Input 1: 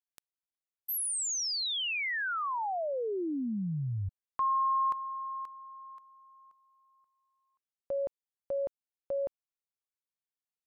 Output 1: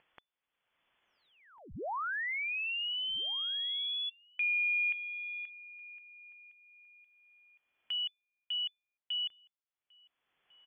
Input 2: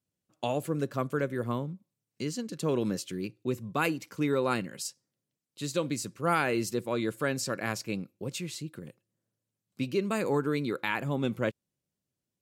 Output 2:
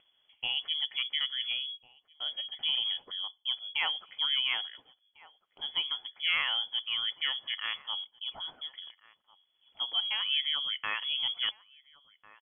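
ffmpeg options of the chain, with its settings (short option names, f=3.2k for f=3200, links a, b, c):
-filter_complex "[0:a]lowpass=f=3k:t=q:w=0.5098,lowpass=f=3k:t=q:w=0.6013,lowpass=f=3k:t=q:w=0.9,lowpass=f=3k:t=q:w=2.563,afreqshift=-3500,acompressor=mode=upward:threshold=-48dB:ratio=2.5:attack=6.8:release=575:knee=2.83:detection=peak,asplit=2[a][b];[b]adelay=1399,volume=-17dB,highshelf=f=4k:g=-31.5[c];[a][c]amix=inputs=2:normalize=0,volume=-2.5dB"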